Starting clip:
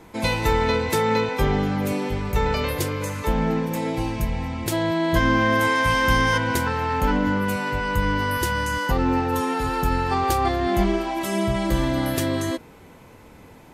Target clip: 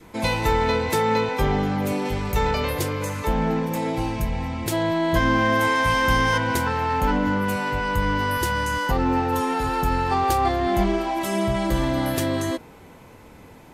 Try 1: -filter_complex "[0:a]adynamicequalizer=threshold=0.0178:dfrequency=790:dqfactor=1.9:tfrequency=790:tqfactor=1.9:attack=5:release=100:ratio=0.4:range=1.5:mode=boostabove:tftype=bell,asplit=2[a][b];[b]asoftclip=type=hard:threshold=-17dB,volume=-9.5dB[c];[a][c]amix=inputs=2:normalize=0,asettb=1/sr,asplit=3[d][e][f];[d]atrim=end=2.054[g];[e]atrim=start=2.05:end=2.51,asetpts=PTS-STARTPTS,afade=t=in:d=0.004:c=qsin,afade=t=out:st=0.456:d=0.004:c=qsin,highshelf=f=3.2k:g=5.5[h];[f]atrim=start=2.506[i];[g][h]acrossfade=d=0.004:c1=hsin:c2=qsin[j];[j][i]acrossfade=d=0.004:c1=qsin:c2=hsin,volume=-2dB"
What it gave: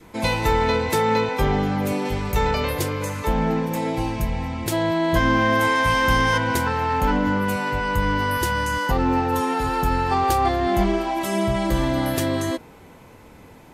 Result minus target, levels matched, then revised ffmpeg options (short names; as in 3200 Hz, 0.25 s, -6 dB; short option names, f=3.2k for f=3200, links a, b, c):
hard clip: distortion -8 dB
-filter_complex "[0:a]adynamicequalizer=threshold=0.0178:dfrequency=790:dqfactor=1.9:tfrequency=790:tqfactor=1.9:attack=5:release=100:ratio=0.4:range=1.5:mode=boostabove:tftype=bell,asplit=2[a][b];[b]asoftclip=type=hard:threshold=-25.5dB,volume=-9.5dB[c];[a][c]amix=inputs=2:normalize=0,asettb=1/sr,asplit=3[d][e][f];[d]atrim=end=2.054[g];[e]atrim=start=2.05:end=2.51,asetpts=PTS-STARTPTS,afade=t=in:d=0.004:c=qsin,afade=t=out:st=0.456:d=0.004:c=qsin,highshelf=f=3.2k:g=5.5[h];[f]atrim=start=2.506[i];[g][h]acrossfade=d=0.004:c1=hsin:c2=qsin[j];[j][i]acrossfade=d=0.004:c1=qsin:c2=hsin,volume=-2dB"